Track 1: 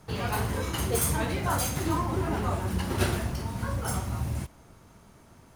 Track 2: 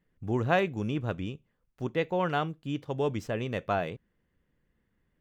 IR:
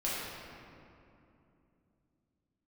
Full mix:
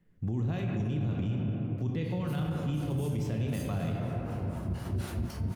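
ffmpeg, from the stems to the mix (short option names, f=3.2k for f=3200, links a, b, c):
-filter_complex "[0:a]acrossover=split=590[a][b];[a]aeval=exprs='val(0)*(1-1/2+1/2*cos(2*PI*4*n/s))':c=same[c];[b]aeval=exprs='val(0)*(1-1/2-1/2*cos(2*PI*4*n/s))':c=same[d];[c][d]amix=inputs=2:normalize=0,adelay=1950,volume=-5.5dB,asplit=2[e][f];[f]volume=-14.5dB[g];[1:a]flanger=delay=7.5:depth=5.7:regen=82:speed=1.7:shape=triangular,acompressor=threshold=-33dB:ratio=3,volume=1dB,asplit=3[h][i][j];[i]volume=-4dB[k];[j]apad=whole_len=331070[l];[e][l]sidechaincompress=threshold=-50dB:ratio=8:attack=16:release=1200[m];[2:a]atrim=start_sample=2205[n];[g][k]amix=inputs=2:normalize=0[o];[o][n]afir=irnorm=-1:irlink=0[p];[m][h][p]amix=inputs=3:normalize=0,equalizer=f=130:t=o:w=2.7:g=8,acrossover=split=230|3000[q][r][s];[r]acompressor=threshold=-37dB:ratio=6[t];[q][t][s]amix=inputs=3:normalize=0,alimiter=limit=-24dB:level=0:latency=1:release=21"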